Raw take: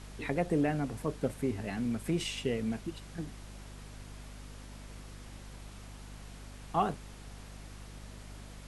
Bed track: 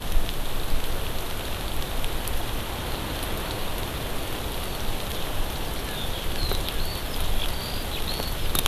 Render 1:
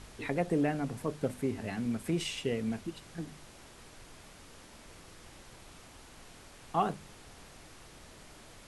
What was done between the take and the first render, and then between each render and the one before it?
de-hum 50 Hz, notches 5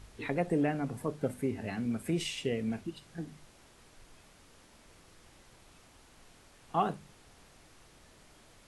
noise print and reduce 6 dB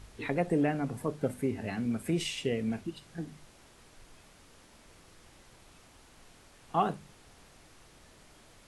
gain +1.5 dB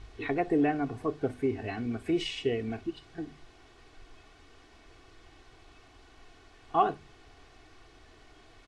LPF 4500 Hz 12 dB/oct; comb 2.7 ms, depth 70%

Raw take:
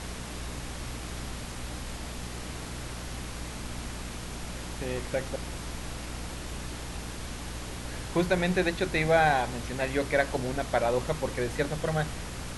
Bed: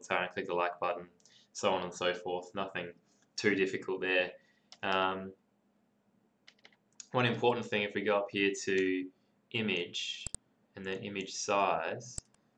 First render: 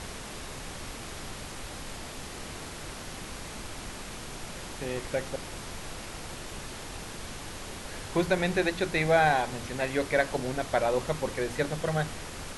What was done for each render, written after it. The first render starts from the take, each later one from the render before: notches 60/120/180/240/300 Hz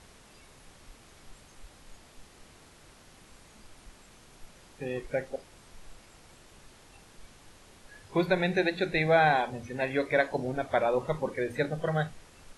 noise print and reduce 15 dB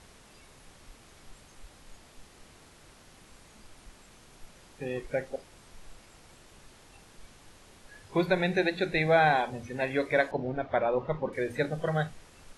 10.31–11.33 air absorption 250 m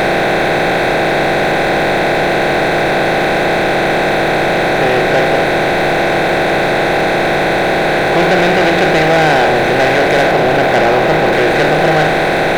per-bin compression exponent 0.2; sample leveller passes 3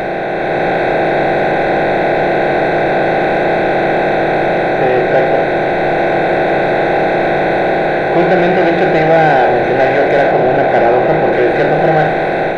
AGC gain up to 5.5 dB; spectral expander 1.5:1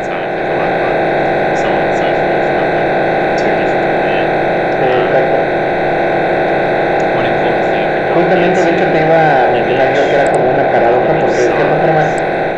add bed +7 dB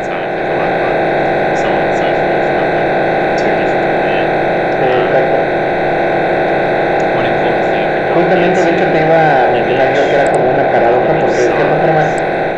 nothing audible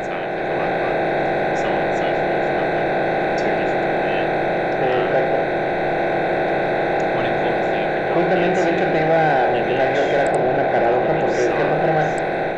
gain -7 dB

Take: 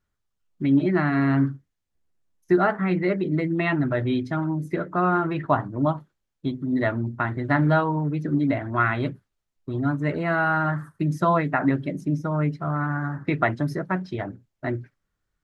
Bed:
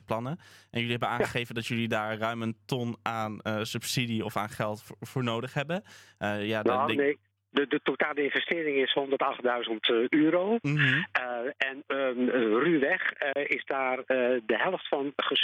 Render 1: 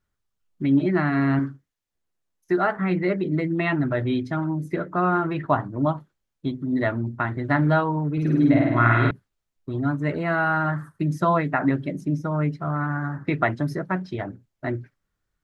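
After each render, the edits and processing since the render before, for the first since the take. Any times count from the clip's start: 1.39–2.77 low shelf 260 Hz -8.5 dB; 8.12–9.11 flutter echo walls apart 8.8 m, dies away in 1.3 s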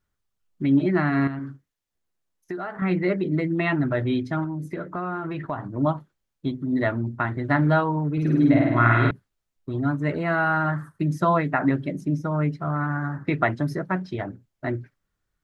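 1.27–2.82 compressor, threshold -28 dBFS; 4.44–5.65 compressor 3:1, threshold -27 dBFS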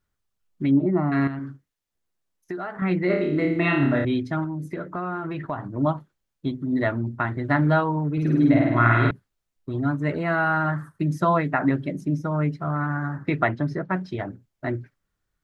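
0.71–1.12 polynomial smoothing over 65 samples; 3.07–4.05 flutter echo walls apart 4.9 m, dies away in 0.64 s; 13.48–13.93 LPF 4100 Hz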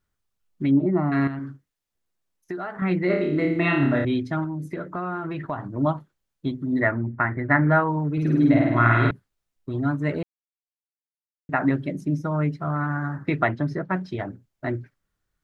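6.8–7.88 resonant high shelf 2600 Hz -8.5 dB, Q 3; 10.23–11.49 mute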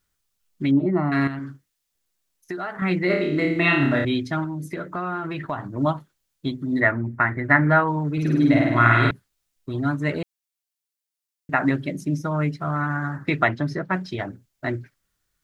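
high shelf 2200 Hz +10.5 dB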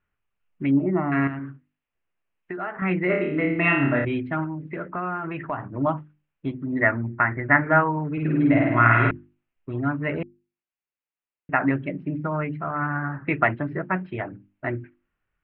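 elliptic low-pass 2700 Hz, stop band 60 dB; notches 50/100/150/200/250/300/350 Hz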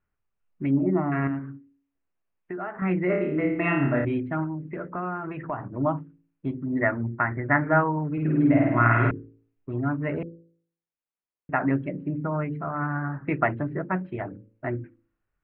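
LPF 1100 Hz 6 dB/oct; de-hum 55.76 Hz, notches 10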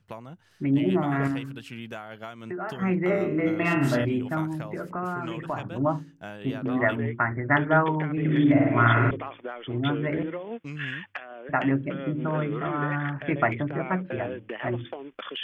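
add bed -9 dB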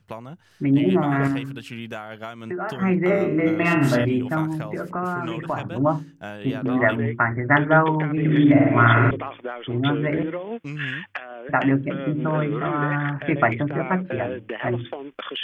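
gain +4.5 dB; limiter -3 dBFS, peak gain reduction 1 dB

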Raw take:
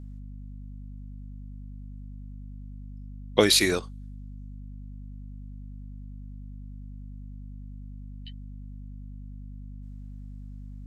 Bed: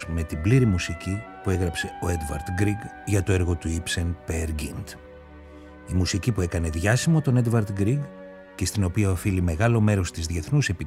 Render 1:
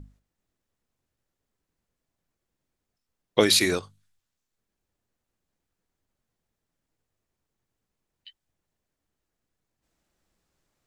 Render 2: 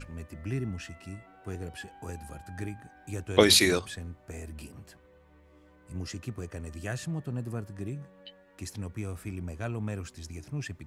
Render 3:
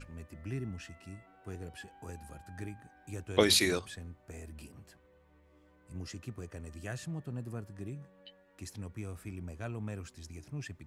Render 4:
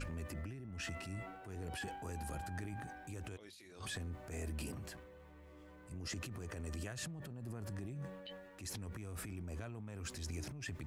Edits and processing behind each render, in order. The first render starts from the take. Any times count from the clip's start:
notches 50/100/150/200/250 Hz
add bed -14 dB
gain -5.5 dB
negative-ratio compressor -46 dBFS, ratio -1; transient shaper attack -7 dB, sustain +6 dB

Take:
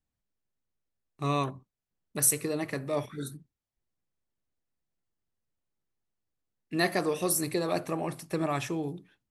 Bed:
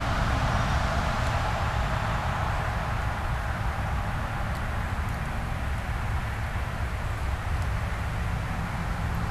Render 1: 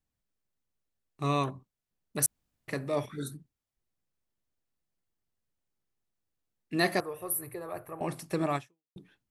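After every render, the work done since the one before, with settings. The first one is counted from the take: 2.26–2.68 room tone; 7–8.01 EQ curve 110 Hz 0 dB, 210 Hz -23 dB, 400 Hz -9 dB, 690 Hz -9 dB, 1200 Hz -6 dB, 1800 Hz -9 dB, 4200 Hz -24 dB, 6600 Hz -25 dB, 14000 Hz +9 dB; 8.56–8.96 fade out exponential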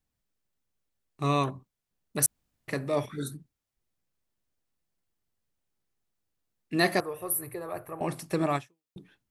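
gain +2.5 dB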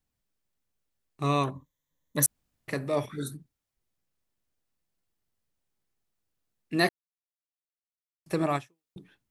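1.55–2.24 ripple EQ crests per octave 1.1, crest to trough 12 dB; 6.89–8.26 mute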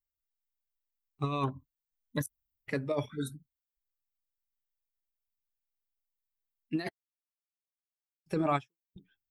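per-bin expansion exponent 1.5; negative-ratio compressor -29 dBFS, ratio -0.5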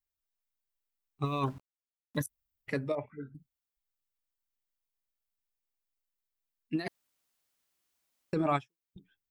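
1.24–2.23 sample gate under -51.5 dBFS; 2.95–3.35 rippled Chebyshev low-pass 2800 Hz, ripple 9 dB; 6.88–8.33 room tone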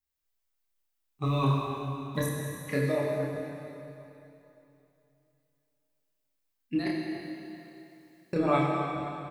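doubler 29 ms -2.5 dB; plate-style reverb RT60 3 s, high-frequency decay 0.95×, DRR -2 dB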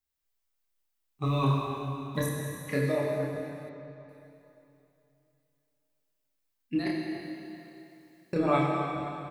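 3.69–4.09 air absorption 130 m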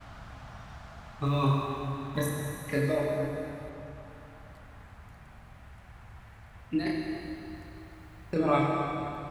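add bed -20.5 dB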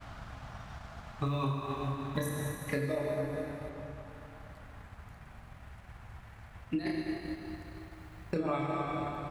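transient shaper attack +2 dB, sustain -4 dB; compressor 6:1, threshold -29 dBFS, peak gain reduction 9.5 dB

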